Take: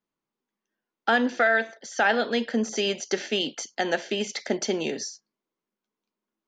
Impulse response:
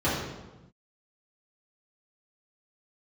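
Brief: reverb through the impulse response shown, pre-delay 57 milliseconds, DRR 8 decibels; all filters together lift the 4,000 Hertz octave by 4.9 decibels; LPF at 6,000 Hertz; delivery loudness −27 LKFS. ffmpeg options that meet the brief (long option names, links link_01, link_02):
-filter_complex "[0:a]lowpass=6000,equalizer=frequency=4000:width_type=o:gain=7.5,asplit=2[link_01][link_02];[1:a]atrim=start_sample=2205,adelay=57[link_03];[link_02][link_03]afir=irnorm=-1:irlink=0,volume=-22dB[link_04];[link_01][link_04]amix=inputs=2:normalize=0,volume=-3dB"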